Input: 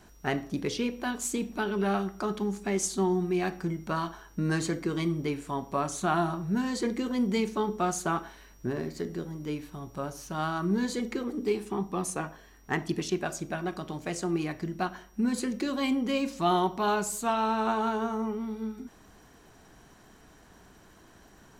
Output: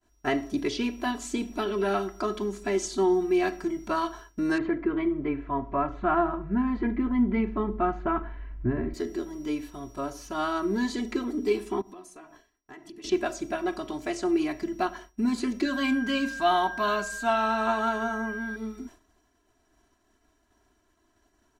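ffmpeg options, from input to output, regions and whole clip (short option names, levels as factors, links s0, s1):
-filter_complex "[0:a]asettb=1/sr,asplit=3[s0][s1][s2];[s0]atrim=end=4.584[s3];[s1]atrim=start=4.58:end=8.94,asetpts=PTS-STARTPTS,afade=t=in:d=0.004:c=qsin,afade=t=out:st=4.356:d=0.004:c=qsin,lowpass=f=2200:w=0.5412,lowpass=f=2200:w=1.3066,asubboost=boost=5.5:cutoff=180[s4];[s2]atrim=start=8.936[s5];[s3][s4]acrossfade=d=0.004:c1=hsin:c2=qsin[s6];[s6][s5]acrossfade=d=0.004:c1=qsin:c2=hsin,asettb=1/sr,asplit=3[s7][s8][s9];[s7]atrim=end=11.814[s10];[s8]atrim=start=11.81:end=13.04,asetpts=PTS-STARTPTS,afade=t=in:d=0.004:c=qsin,afade=t=out:st=1.226:d=0.004:c=qsin,bandreject=f=50:t=h:w=6,bandreject=f=100:t=h:w=6,bandreject=f=150:t=h:w=6,bandreject=f=200:t=h:w=6,bandreject=f=250:t=h:w=6,bandreject=f=300:t=h:w=6,bandreject=f=350:t=h:w=6,bandreject=f=400:t=h:w=6,acompressor=threshold=0.00708:ratio=10:attack=3.2:release=140:knee=1:detection=peak[s11];[s9]atrim=start=13.036[s12];[s10][s11]acrossfade=d=0.004:c1=hsin:c2=qsin[s13];[s13][s12]acrossfade=d=0.004:c1=qsin:c2=hsin,asettb=1/sr,asplit=3[s14][s15][s16];[s14]atrim=end=15.654[s17];[s15]atrim=start=15.65:end=18.56,asetpts=PTS-STARTPTS,afade=t=in:d=0.004:c=qsin,afade=t=out:st=2.906:d=0.004:c=qsin,equalizer=f=370:w=3.7:g=-12,aeval=exprs='val(0)+0.0126*sin(2*PI*1600*n/s)':c=same[s18];[s16]atrim=start=18.556[s19];[s17][s18]acrossfade=d=0.004:c1=hsin:c2=qsin[s20];[s20][s19]acrossfade=d=0.004:c1=qsin:c2=hsin,agate=range=0.0224:threshold=0.00631:ratio=3:detection=peak,acrossover=split=5900[s21][s22];[s22]acompressor=threshold=0.00224:ratio=4:attack=1:release=60[s23];[s21][s23]amix=inputs=2:normalize=0,aecho=1:1:3:0.94"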